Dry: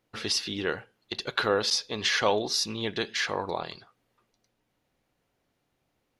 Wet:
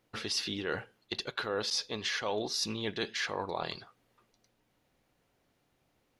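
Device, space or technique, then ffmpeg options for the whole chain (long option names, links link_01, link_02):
compression on the reversed sound: -af "areverse,acompressor=threshold=-33dB:ratio=5,areverse,volume=2dB"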